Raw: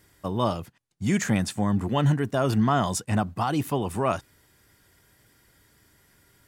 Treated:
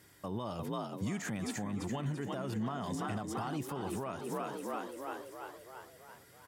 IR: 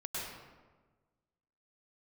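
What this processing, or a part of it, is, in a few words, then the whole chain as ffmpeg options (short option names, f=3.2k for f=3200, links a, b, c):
podcast mastering chain: -filter_complex "[0:a]asplit=8[a][b][c][d][e][f][g][h];[b]adelay=337,afreqshift=50,volume=-9dB[i];[c]adelay=674,afreqshift=100,volume=-13.4dB[j];[d]adelay=1011,afreqshift=150,volume=-17.9dB[k];[e]adelay=1348,afreqshift=200,volume=-22.3dB[l];[f]adelay=1685,afreqshift=250,volume=-26.7dB[m];[g]adelay=2022,afreqshift=300,volume=-31.2dB[n];[h]adelay=2359,afreqshift=350,volume=-35.6dB[o];[a][i][j][k][l][m][n][o]amix=inputs=8:normalize=0,highpass=93,deesser=0.65,acompressor=threshold=-27dB:ratio=3,alimiter=level_in=3.5dB:limit=-24dB:level=0:latency=1:release=240,volume=-3.5dB" -ar 48000 -c:a libmp3lame -b:a 96k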